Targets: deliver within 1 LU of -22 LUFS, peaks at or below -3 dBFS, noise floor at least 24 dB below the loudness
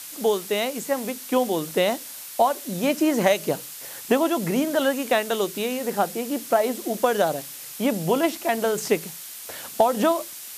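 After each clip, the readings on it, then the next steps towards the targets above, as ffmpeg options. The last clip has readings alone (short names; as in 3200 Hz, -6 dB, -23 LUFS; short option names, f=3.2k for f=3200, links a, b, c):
noise floor -39 dBFS; noise floor target -48 dBFS; loudness -24.0 LUFS; peak -6.0 dBFS; loudness target -22.0 LUFS
-> -af "afftdn=nr=9:nf=-39"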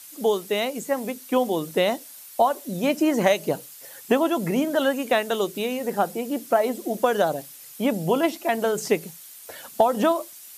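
noise floor -44 dBFS; noise floor target -48 dBFS
-> -af "afftdn=nr=6:nf=-44"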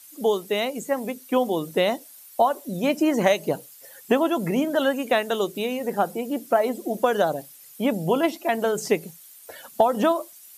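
noise floor -48 dBFS; loudness -24.0 LUFS; peak -6.5 dBFS; loudness target -22.0 LUFS
-> -af "volume=2dB"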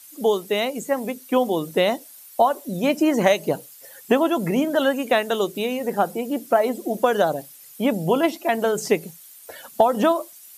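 loudness -22.0 LUFS; peak -4.5 dBFS; noise floor -46 dBFS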